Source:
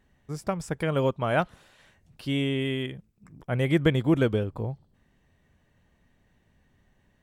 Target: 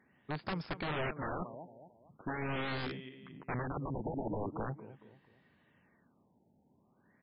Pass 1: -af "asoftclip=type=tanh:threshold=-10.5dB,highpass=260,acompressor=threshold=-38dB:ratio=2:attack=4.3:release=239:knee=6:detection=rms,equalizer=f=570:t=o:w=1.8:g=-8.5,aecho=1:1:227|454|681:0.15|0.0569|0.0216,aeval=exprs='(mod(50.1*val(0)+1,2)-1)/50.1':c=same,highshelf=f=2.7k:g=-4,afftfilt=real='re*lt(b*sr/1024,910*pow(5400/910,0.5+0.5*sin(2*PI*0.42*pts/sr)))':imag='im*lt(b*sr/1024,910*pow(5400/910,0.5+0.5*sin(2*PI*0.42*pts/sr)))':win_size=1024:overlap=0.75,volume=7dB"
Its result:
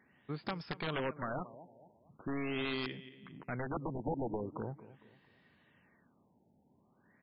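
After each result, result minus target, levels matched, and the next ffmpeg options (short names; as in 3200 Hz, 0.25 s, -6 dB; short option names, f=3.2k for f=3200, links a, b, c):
soft clip: distortion +12 dB; compressor: peak gain reduction +5 dB; 4000 Hz band +2.5 dB
-af "asoftclip=type=tanh:threshold=-3.5dB,highpass=260,acompressor=threshold=-38dB:ratio=2:attack=4.3:release=239:knee=6:detection=rms,equalizer=f=570:t=o:w=1.8:g=-8.5,aecho=1:1:227|454|681:0.15|0.0569|0.0216,aeval=exprs='(mod(50.1*val(0)+1,2)-1)/50.1':c=same,highshelf=f=2.7k:g=-4,afftfilt=real='re*lt(b*sr/1024,910*pow(5400/910,0.5+0.5*sin(2*PI*0.42*pts/sr)))':imag='im*lt(b*sr/1024,910*pow(5400/910,0.5+0.5*sin(2*PI*0.42*pts/sr)))':win_size=1024:overlap=0.75,volume=7dB"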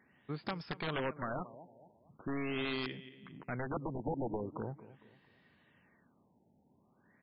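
compressor: peak gain reduction +5.5 dB; 4000 Hz band +2.5 dB
-af "asoftclip=type=tanh:threshold=-3.5dB,highpass=260,acompressor=threshold=-27dB:ratio=2:attack=4.3:release=239:knee=6:detection=rms,equalizer=f=570:t=o:w=1.8:g=-8.5,aecho=1:1:227|454|681:0.15|0.0569|0.0216,aeval=exprs='(mod(50.1*val(0)+1,2)-1)/50.1':c=same,highshelf=f=2.7k:g=-4,afftfilt=real='re*lt(b*sr/1024,910*pow(5400/910,0.5+0.5*sin(2*PI*0.42*pts/sr)))':imag='im*lt(b*sr/1024,910*pow(5400/910,0.5+0.5*sin(2*PI*0.42*pts/sr)))':win_size=1024:overlap=0.75,volume=7dB"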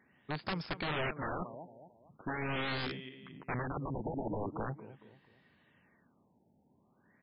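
4000 Hz band +3.5 dB
-af "asoftclip=type=tanh:threshold=-3.5dB,highpass=260,acompressor=threshold=-27dB:ratio=2:attack=4.3:release=239:knee=6:detection=rms,equalizer=f=570:t=o:w=1.8:g=-8.5,aecho=1:1:227|454|681:0.15|0.0569|0.0216,aeval=exprs='(mod(50.1*val(0)+1,2)-1)/50.1':c=same,highshelf=f=2.7k:g=-11,afftfilt=real='re*lt(b*sr/1024,910*pow(5400/910,0.5+0.5*sin(2*PI*0.42*pts/sr)))':imag='im*lt(b*sr/1024,910*pow(5400/910,0.5+0.5*sin(2*PI*0.42*pts/sr)))':win_size=1024:overlap=0.75,volume=7dB"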